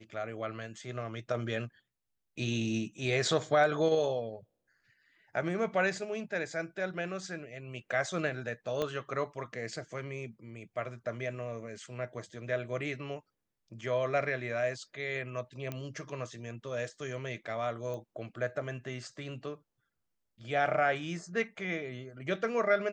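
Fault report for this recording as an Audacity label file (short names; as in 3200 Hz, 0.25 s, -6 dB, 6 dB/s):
8.820000	8.820000	pop -19 dBFS
15.720000	15.720000	pop -23 dBFS
17.940000	17.940000	pop -29 dBFS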